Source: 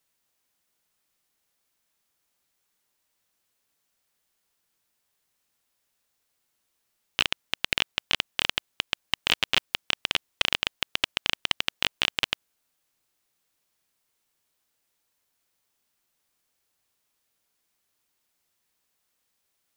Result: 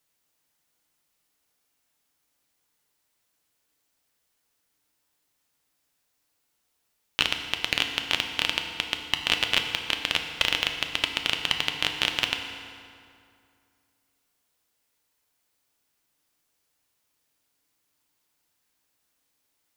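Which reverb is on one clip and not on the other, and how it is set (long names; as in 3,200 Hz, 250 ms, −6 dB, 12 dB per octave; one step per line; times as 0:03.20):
feedback delay network reverb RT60 2.4 s, low-frequency decay 1.1×, high-frequency decay 0.7×, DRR 4 dB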